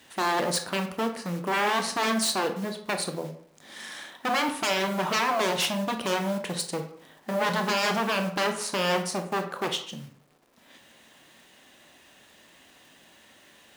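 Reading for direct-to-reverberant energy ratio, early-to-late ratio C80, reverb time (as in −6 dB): 6.0 dB, 13.0 dB, 0.60 s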